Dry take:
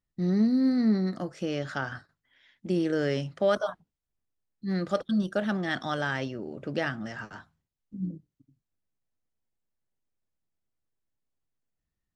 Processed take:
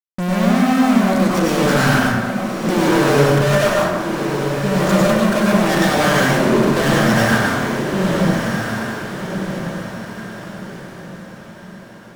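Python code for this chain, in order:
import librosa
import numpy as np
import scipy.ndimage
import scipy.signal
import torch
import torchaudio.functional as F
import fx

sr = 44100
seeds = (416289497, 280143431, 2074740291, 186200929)

p1 = fx.peak_eq(x, sr, hz=1700.0, db=-2.5, octaves=2.5)
p2 = fx.fuzz(p1, sr, gain_db=50.0, gate_db=-50.0)
p3 = p2 + fx.echo_diffused(p2, sr, ms=1339, feedback_pct=41, wet_db=-6.0, dry=0)
p4 = fx.rev_plate(p3, sr, seeds[0], rt60_s=1.2, hf_ratio=0.45, predelay_ms=85, drr_db=-5.0)
y = p4 * 10.0 ** (-6.5 / 20.0)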